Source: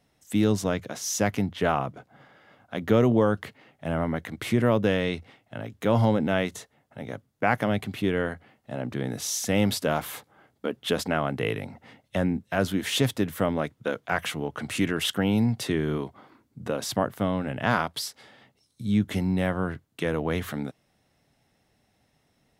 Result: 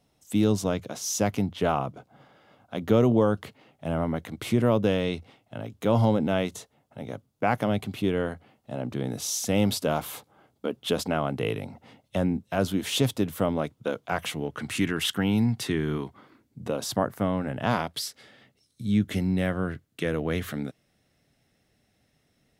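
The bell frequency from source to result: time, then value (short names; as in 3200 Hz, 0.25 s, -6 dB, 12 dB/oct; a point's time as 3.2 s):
bell -7.5 dB 0.62 oct
14.22 s 1800 Hz
14.68 s 570 Hz
16.06 s 570 Hz
17.32 s 4300 Hz
17.96 s 910 Hz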